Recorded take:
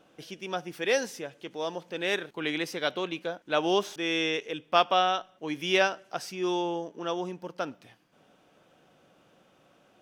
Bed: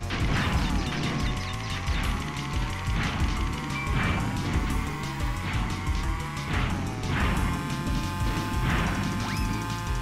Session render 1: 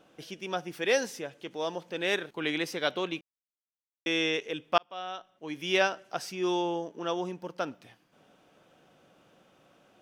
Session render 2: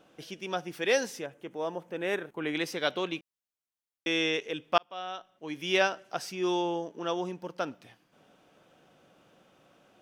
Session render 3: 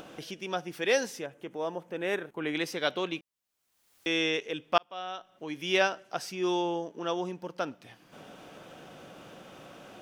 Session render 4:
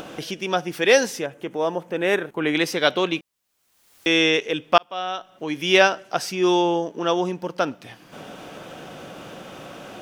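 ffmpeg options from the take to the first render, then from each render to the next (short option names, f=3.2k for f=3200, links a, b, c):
-filter_complex "[0:a]asplit=4[a][b][c][d];[a]atrim=end=3.21,asetpts=PTS-STARTPTS,afade=t=out:st=3.206:d=0.004:c=hsin[e];[b]atrim=start=3.21:end=4.06,asetpts=PTS-STARTPTS,volume=0[f];[c]atrim=start=4.06:end=4.78,asetpts=PTS-STARTPTS,afade=t=in:d=0.004:c=hsin,afade=t=out:st=0.716:d=0.004:c=hsin[g];[d]atrim=start=4.78,asetpts=PTS-STARTPTS,afade=t=in:d=1.21[h];[e][f][g][h]concat=n=4:v=0:a=1"
-filter_complex "[0:a]asettb=1/sr,asplit=3[a][b][c];[a]atrim=end=1.264[d];[b]atrim=start=1.26:end=2.55,asetpts=PTS-STARTPTS,afade=t=in:d=0.004:c=qsin,afade=t=out:st=1.286:d=0.004:c=qsin,equalizer=f=4.4k:t=o:w=1.3:g=-14[e];[c]atrim=start=2.546[f];[d][e]acrossfade=d=0.004:c1=hsin:c2=qsin[g];[g][f]acrossfade=d=0.004:c1=qsin:c2=hsin"
-af "acompressor=mode=upward:threshold=-36dB:ratio=2.5"
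-af "volume=10dB,alimiter=limit=-1dB:level=0:latency=1"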